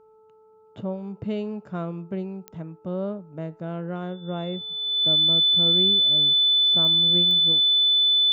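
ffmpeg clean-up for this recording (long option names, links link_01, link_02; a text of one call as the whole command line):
ffmpeg -i in.wav -af "adeclick=threshold=4,bandreject=frequency=436.9:width_type=h:width=4,bandreject=frequency=873.8:width_type=h:width=4,bandreject=frequency=1310.7:width_type=h:width=4,bandreject=frequency=3500:width=30" out.wav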